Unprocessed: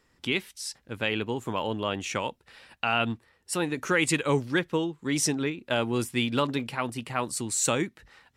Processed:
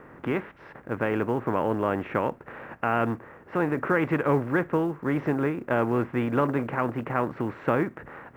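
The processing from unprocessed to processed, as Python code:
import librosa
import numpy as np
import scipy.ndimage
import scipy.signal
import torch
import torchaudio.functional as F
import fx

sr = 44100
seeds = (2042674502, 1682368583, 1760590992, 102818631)

y = fx.bin_compress(x, sr, power=0.6)
y = scipy.signal.sosfilt(scipy.signal.butter(4, 1700.0, 'lowpass', fs=sr, output='sos'), y)
y = fx.quant_companded(y, sr, bits=8)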